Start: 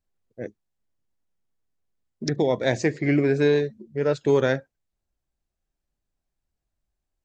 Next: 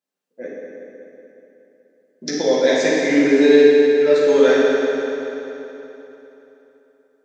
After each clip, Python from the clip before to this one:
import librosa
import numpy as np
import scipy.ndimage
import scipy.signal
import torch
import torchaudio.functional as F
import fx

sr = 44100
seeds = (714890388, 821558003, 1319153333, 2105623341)

y = scipy.signal.sosfilt(scipy.signal.butter(4, 240.0, 'highpass', fs=sr, output='sos'), x)
y = fx.dynamic_eq(y, sr, hz=4200.0, q=0.87, threshold_db=-43.0, ratio=4.0, max_db=5)
y = fx.rev_fdn(y, sr, rt60_s=3.4, lf_ratio=1.0, hf_ratio=0.8, size_ms=34.0, drr_db=-8.5)
y = y * 10.0 ** (-2.5 / 20.0)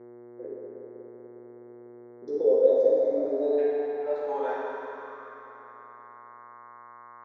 y = fx.spec_box(x, sr, start_s=1.79, length_s=1.79, low_hz=1400.0, high_hz=3400.0, gain_db=-16)
y = fx.dmg_buzz(y, sr, base_hz=120.0, harmonics=18, level_db=-36.0, tilt_db=-4, odd_only=False)
y = fx.filter_sweep_bandpass(y, sr, from_hz=390.0, to_hz=1100.0, start_s=2.03, end_s=5.26, q=7.2)
y = y * 10.0 ** (1.5 / 20.0)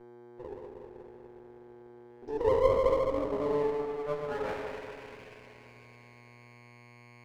y = fx.lower_of_two(x, sr, delay_ms=0.38)
y = y * 10.0 ** (-3.5 / 20.0)